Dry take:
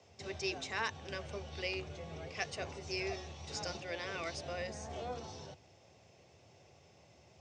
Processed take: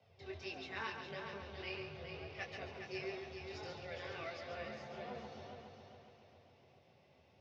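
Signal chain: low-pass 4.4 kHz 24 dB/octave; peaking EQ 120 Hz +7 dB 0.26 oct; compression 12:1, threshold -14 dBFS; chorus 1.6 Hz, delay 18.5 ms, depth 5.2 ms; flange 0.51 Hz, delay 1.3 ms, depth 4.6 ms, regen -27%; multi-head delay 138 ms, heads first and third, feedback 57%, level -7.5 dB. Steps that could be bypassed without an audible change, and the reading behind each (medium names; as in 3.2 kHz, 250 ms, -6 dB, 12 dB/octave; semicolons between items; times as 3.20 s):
compression, threshold -14 dBFS: peak at its input -22.5 dBFS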